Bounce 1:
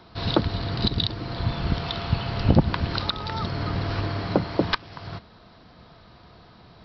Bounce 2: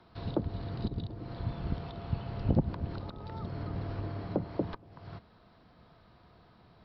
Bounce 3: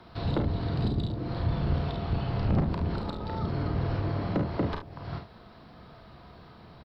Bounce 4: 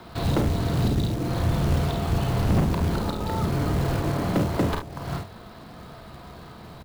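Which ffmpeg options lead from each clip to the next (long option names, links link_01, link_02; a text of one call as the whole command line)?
ffmpeg -i in.wav -filter_complex "[0:a]highshelf=frequency=4800:gain=-11.5,acrossover=split=460|790[link_01][link_02][link_03];[link_03]acompressor=threshold=-43dB:ratio=6[link_04];[link_01][link_02][link_04]amix=inputs=3:normalize=0,volume=-9dB" out.wav
ffmpeg -i in.wav -filter_complex "[0:a]asoftclip=type=tanh:threshold=-29.5dB,asplit=2[link_01][link_02];[link_02]aecho=0:1:35|49|72:0.447|0.398|0.251[link_03];[link_01][link_03]amix=inputs=2:normalize=0,volume=8dB" out.wav
ffmpeg -i in.wav -af "bandreject=frequency=50:width_type=h:width=6,bandreject=frequency=100:width_type=h:width=6,asoftclip=type=tanh:threshold=-23.5dB,acrusher=bits=4:mode=log:mix=0:aa=0.000001,volume=7.5dB" out.wav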